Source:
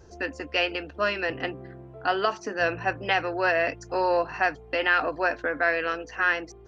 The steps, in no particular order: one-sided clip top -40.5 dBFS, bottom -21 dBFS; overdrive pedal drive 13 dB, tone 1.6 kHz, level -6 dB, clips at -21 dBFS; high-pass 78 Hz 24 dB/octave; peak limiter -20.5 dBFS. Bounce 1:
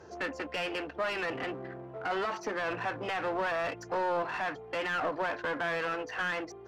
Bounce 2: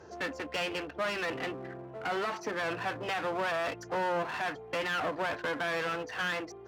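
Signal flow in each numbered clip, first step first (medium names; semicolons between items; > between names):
peak limiter > one-sided clip > high-pass > overdrive pedal; overdrive pedal > peak limiter > one-sided clip > high-pass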